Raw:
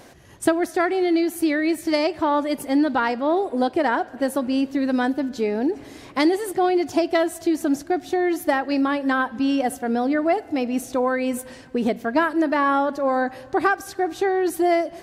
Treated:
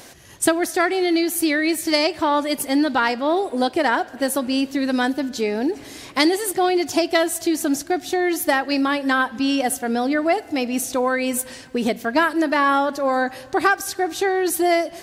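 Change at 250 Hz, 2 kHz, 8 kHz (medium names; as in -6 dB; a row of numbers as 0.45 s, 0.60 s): 0.0 dB, +4.5 dB, +10.5 dB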